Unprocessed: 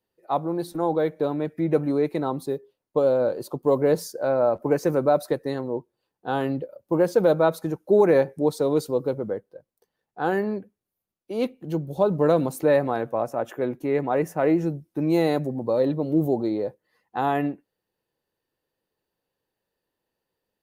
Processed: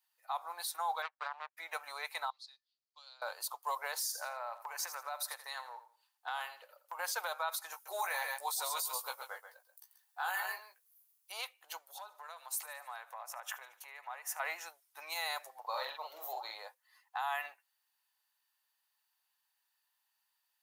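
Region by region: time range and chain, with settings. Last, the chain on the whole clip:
1.02–1.57 s: tape spacing loss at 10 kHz 26 dB + power-law waveshaper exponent 2
2.30–3.22 s: band-pass filter 4.6 kHz, Q 4.6 + distance through air 68 m
3.96–6.99 s: compression 12:1, threshold -25 dBFS + feedback delay 84 ms, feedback 29%, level -13 dB
7.72–11.32 s: treble shelf 7.5 kHz +12 dB + doubling 16 ms -5.5 dB + delay 135 ms -9.5 dB
11.85–14.40 s: compression 10:1, threshold -32 dBFS + feedback delay 74 ms, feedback 59%, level -20 dB
15.60–16.55 s: peaking EQ 9.3 kHz -11 dB 0.65 oct + doubling 45 ms -3 dB
whole clip: steep high-pass 850 Hz 36 dB/octave; treble shelf 3.6 kHz +8 dB; peak limiter -26.5 dBFS

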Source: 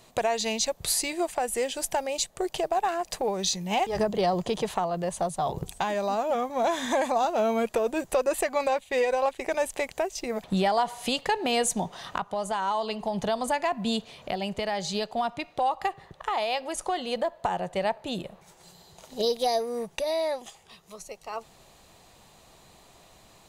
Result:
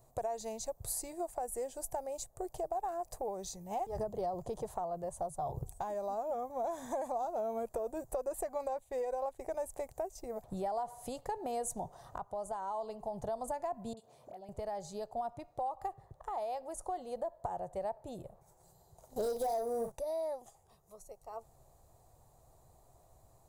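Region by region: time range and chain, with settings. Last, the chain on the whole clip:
13.93–14.49 s: high-pass 180 Hz + compression 3:1, threshold -38 dBFS + phase dispersion highs, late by 42 ms, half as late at 1.1 kHz
19.16–19.92 s: doubling 43 ms -9 dB + waveshaping leveller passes 3
whole clip: FFT filter 130 Hz 0 dB, 180 Hz -14 dB, 720 Hz -5 dB, 2.9 kHz -28 dB, 7.7 kHz -12 dB; compression, threshold -30 dBFS; treble shelf 12 kHz +11 dB; trim -2 dB

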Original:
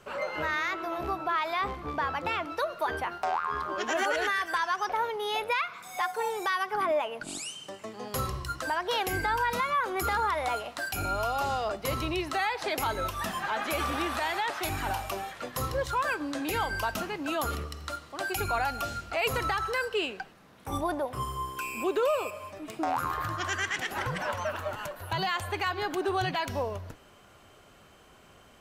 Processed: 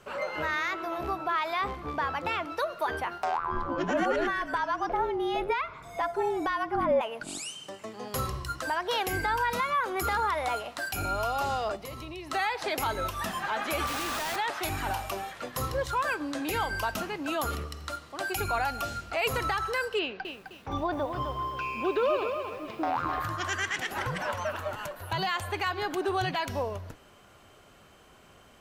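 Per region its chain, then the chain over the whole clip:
3.37–7.01 s: tilt EQ -3.5 dB/octave + frequency shift -50 Hz
11.76–12.31 s: peaking EQ 1.5 kHz -8.5 dB 0.21 oct + compression 2.5:1, threshold -41 dBFS
13.87–14.36 s: bass shelf 270 Hz -10 dB + band-stop 2.1 kHz, Q 14 + Schmitt trigger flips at -49 dBFS
19.99–23.20 s: low-pass 4.7 kHz 24 dB/octave + careless resampling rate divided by 3×, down none, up filtered + bit-crushed delay 258 ms, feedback 35%, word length 9-bit, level -7 dB
whole clip: none

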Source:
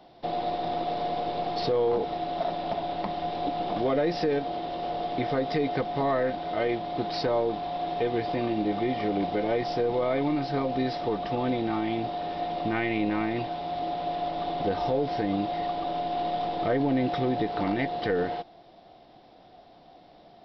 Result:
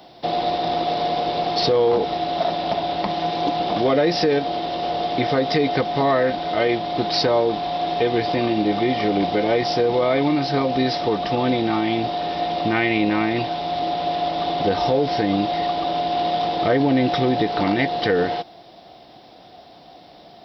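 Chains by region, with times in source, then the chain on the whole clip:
3.09–3.57 s: high-pass 59 Hz + comb 6 ms, depth 31% + loudspeaker Doppler distortion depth 0.13 ms
whole clip: high-pass 48 Hz; treble shelf 3.9 kHz +11.5 dB; trim +7 dB

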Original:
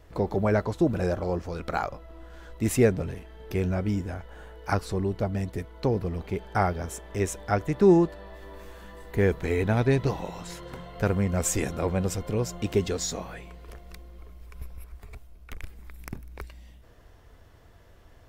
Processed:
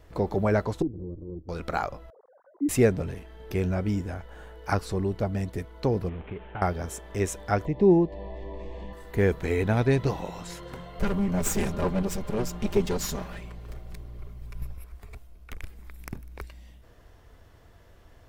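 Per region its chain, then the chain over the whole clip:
0.82–1.49 s: comb filter that takes the minimum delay 0.62 ms + four-pole ladder low-pass 380 Hz, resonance 45% + peaking EQ 220 Hz -11.5 dB 0.37 oct
2.10–2.69 s: formants replaced by sine waves + Gaussian low-pass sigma 9 samples
6.09–6.62 s: CVSD coder 16 kbps + compression 10:1, threshold -31 dBFS
7.65–8.93 s: upward compressor, threshold -26 dBFS + Butterworth band-stop 1.4 kHz, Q 1.5 + tape spacing loss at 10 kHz 28 dB
10.99–14.74 s: comb filter that takes the minimum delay 5 ms + bass shelf 140 Hz +10.5 dB
whole clip: none

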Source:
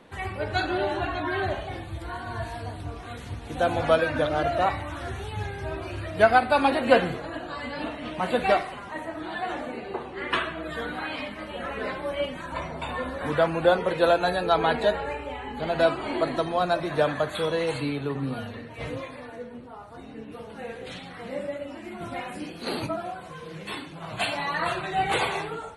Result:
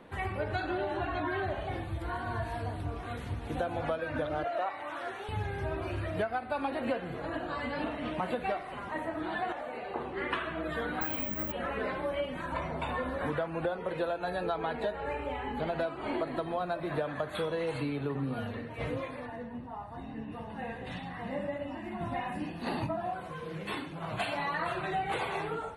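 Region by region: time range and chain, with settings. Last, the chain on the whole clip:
4.44–5.29 s: high-pass 460 Hz + treble shelf 9.1 kHz -8.5 dB
9.52–9.96 s: resonant low shelf 450 Hz -7.5 dB, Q 1.5 + compression 5:1, threshold -34 dBFS
11.01–11.52 s: bass shelf 280 Hz +10.5 dB + careless resampling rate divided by 2×, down filtered, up zero stuff
16.28–17.09 s: peaking EQ 5.9 kHz -12 dB 0.22 oct + word length cut 12-bit, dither none
19.26–23.13 s: treble shelf 4.2 kHz -7 dB + comb 1.1 ms, depth 55%
whole clip: peaking EQ 6.3 kHz -9 dB 1.7 oct; compression 12:1, threshold -29 dBFS

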